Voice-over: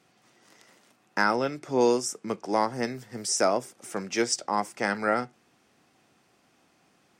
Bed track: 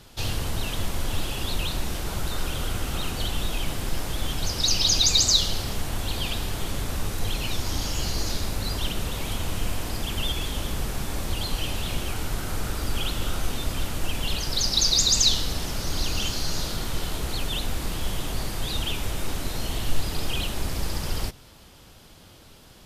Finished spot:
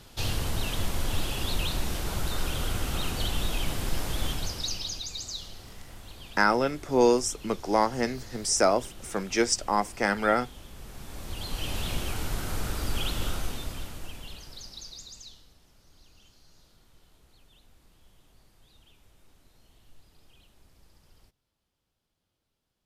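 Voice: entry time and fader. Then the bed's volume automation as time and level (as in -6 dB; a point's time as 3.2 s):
5.20 s, +1.5 dB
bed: 4.27 s -1.5 dB
5.07 s -17.5 dB
10.71 s -17.5 dB
11.77 s -2.5 dB
13.26 s -2.5 dB
15.58 s -31.5 dB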